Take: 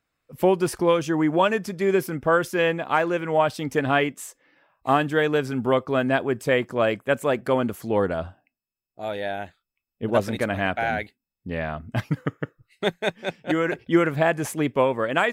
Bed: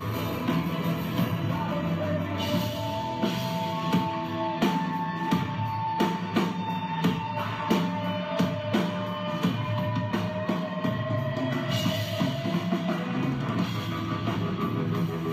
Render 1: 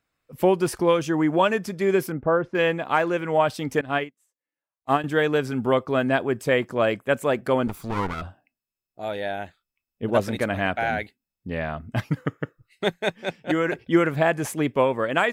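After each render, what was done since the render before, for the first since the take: 2.12–2.55 s: low-pass 1.1 kHz; 3.81–5.04 s: upward expansion 2.5:1, over -38 dBFS; 7.67–8.22 s: comb filter that takes the minimum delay 0.84 ms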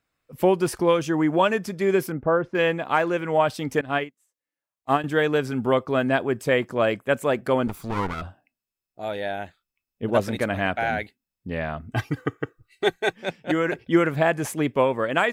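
11.90–13.13 s: comb 2.6 ms, depth 69%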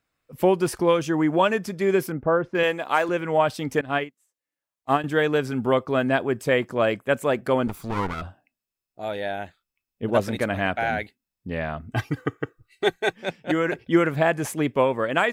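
2.63–3.09 s: tone controls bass -10 dB, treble +7 dB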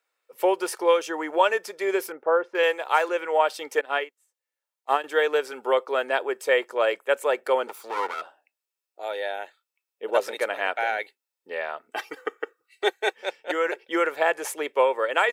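high-pass 440 Hz 24 dB/octave; comb 2.2 ms, depth 33%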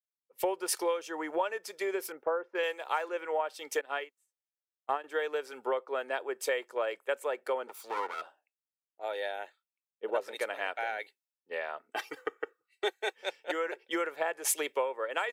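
compression 6:1, threshold -30 dBFS, peak gain reduction 15 dB; three bands expanded up and down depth 100%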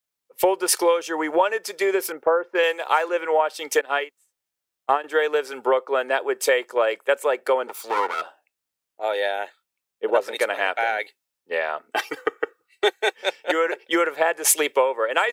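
trim +11.5 dB

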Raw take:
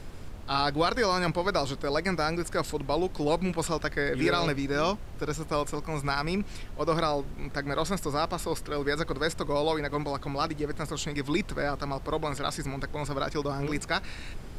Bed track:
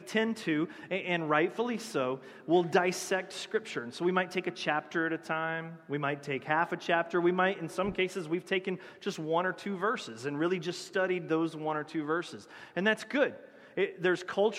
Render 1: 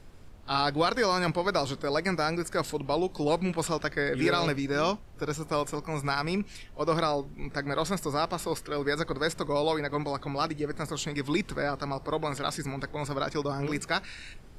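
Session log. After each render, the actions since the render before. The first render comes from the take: noise print and reduce 9 dB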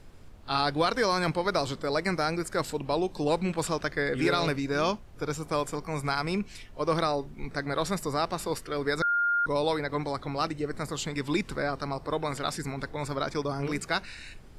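9.02–9.46 s: bleep 1.41 kHz -22.5 dBFS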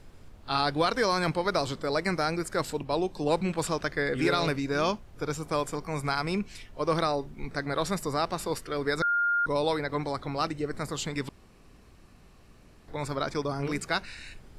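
2.83–3.41 s: three bands expanded up and down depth 40%; 11.29–12.88 s: room tone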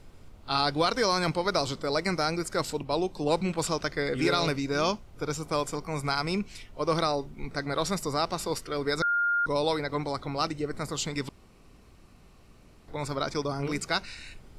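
band-stop 1.7 kHz, Q 11; dynamic bell 5.5 kHz, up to +5 dB, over -48 dBFS, Q 1.4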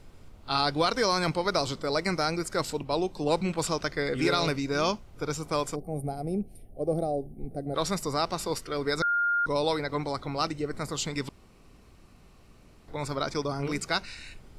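5.75–7.75 s: time-frequency box 820–8600 Hz -25 dB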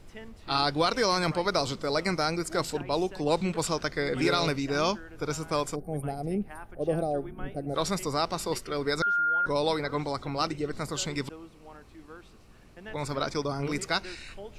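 add bed track -16.5 dB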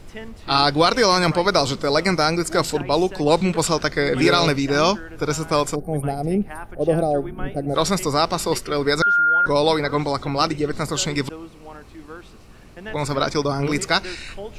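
trim +9 dB

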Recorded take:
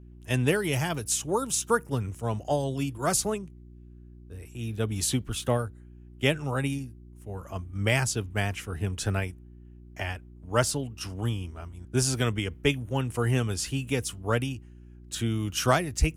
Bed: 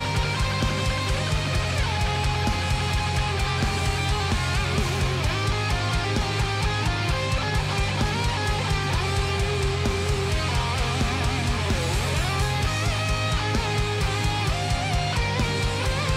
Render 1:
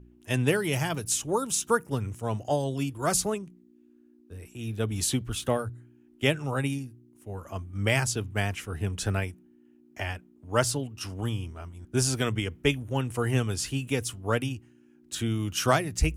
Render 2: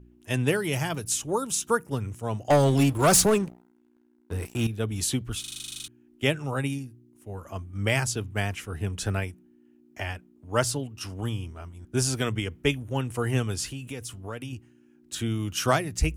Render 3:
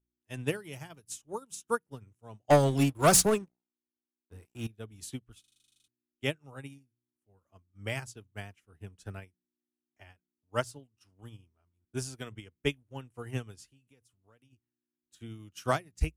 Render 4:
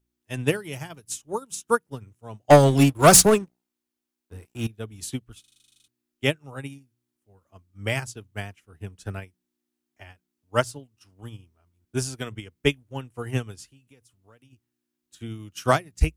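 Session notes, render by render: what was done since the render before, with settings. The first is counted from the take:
de-hum 60 Hz, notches 3
2.50–4.67 s: waveshaping leveller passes 3; 5.40 s: stutter in place 0.04 s, 12 plays; 13.66–14.53 s: compression 3:1, threshold -34 dBFS
upward expansion 2.5:1, over -39 dBFS
trim +8.5 dB

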